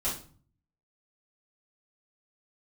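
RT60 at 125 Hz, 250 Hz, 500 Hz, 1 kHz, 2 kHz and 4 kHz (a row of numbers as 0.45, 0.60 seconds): 0.85, 0.65, 0.45, 0.45, 0.35, 0.35 seconds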